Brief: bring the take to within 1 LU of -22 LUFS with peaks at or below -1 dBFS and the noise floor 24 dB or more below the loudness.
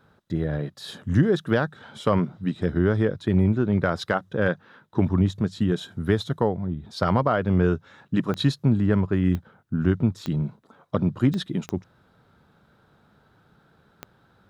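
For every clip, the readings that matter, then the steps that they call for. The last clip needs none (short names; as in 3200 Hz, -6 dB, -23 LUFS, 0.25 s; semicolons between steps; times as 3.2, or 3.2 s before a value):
clicks 6; loudness -24.5 LUFS; peak -7.5 dBFS; loudness target -22.0 LUFS
-> de-click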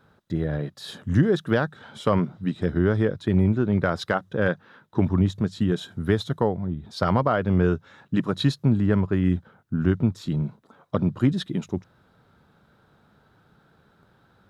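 clicks 0; loudness -24.5 LUFS; peak -7.5 dBFS; loudness target -22.0 LUFS
-> gain +2.5 dB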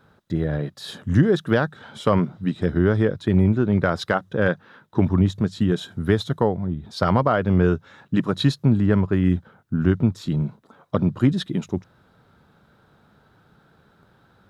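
loudness -22.0 LUFS; peak -5.0 dBFS; noise floor -59 dBFS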